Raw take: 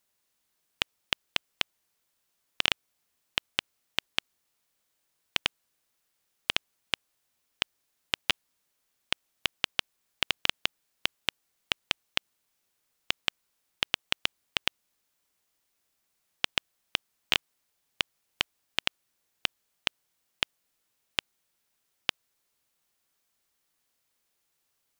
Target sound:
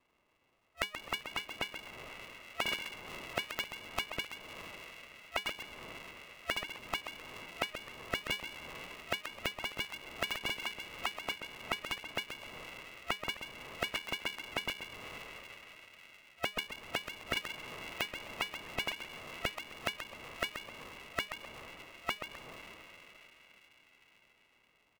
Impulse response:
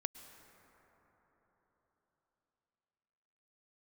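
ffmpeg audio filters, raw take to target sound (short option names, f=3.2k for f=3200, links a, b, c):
-filter_complex "[0:a]asplit=2[a][b];[1:a]atrim=start_sample=2205,asetrate=31311,aresample=44100[c];[b][c]afir=irnorm=-1:irlink=0,volume=4dB[d];[a][d]amix=inputs=2:normalize=0,asplit=3[e][f][g];[e]afade=t=out:st=17.33:d=0.02[h];[f]aeval=exprs='clip(val(0),-1,0.158)':c=same,afade=t=in:st=17.33:d=0.02,afade=t=out:st=18.85:d=0.02[i];[g]afade=t=in:st=18.85:d=0.02[j];[h][i][j]amix=inputs=3:normalize=0,afftfilt=real='re*(1-between(b*sr/4096,340,1600))':imag='im*(1-between(b*sr/4096,340,1600))':win_size=4096:overlap=0.75,acrossover=split=110[k][l];[l]acompressor=threshold=-39dB:ratio=8[m];[k][m]amix=inputs=2:normalize=0,asplit=5[n][o][p][q][r];[o]adelay=130,afreqshift=73,volume=-8.5dB[s];[p]adelay=260,afreqshift=146,volume=-17.6dB[t];[q]adelay=390,afreqshift=219,volume=-26.7dB[u];[r]adelay=520,afreqshift=292,volume=-35.9dB[v];[n][s][t][u][v]amix=inputs=5:normalize=0,lowpass=f=2.2k:t=q:w=0.5098,lowpass=f=2.2k:t=q:w=0.6013,lowpass=f=2.2k:t=q:w=0.9,lowpass=f=2.2k:t=q:w=2.563,afreqshift=-2600,aeval=exprs='val(0)*sgn(sin(2*PI*310*n/s))':c=same,volume=7dB"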